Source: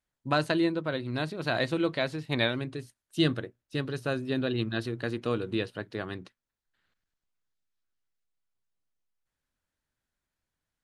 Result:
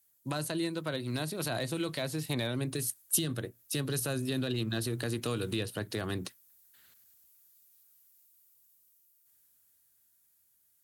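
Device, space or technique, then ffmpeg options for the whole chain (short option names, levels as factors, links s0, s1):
FM broadcast chain: -filter_complex "[0:a]highpass=f=56:w=0.5412,highpass=f=56:w=1.3066,dynaudnorm=f=230:g=21:m=2.51,acrossover=split=160|1100[s0][s1][s2];[s0]acompressor=threshold=0.02:ratio=4[s3];[s1]acompressor=threshold=0.0251:ratio=4[s4];[s2]acompressor=threshold=0.00794:ratio=4[s5];[s3][s4][s5]amix=inputs=3:normalize=0,aemphasis=mode=production:type=50fm,alimiter=limit=0.0668:level=0:latency=1:release=36,asoftclip=type=hard:threshold=0.0596,lowpass=f=15000:w=0.5412,lowpass=f=15000:w=1.3066,aemphasis=mode=production:type=50fm"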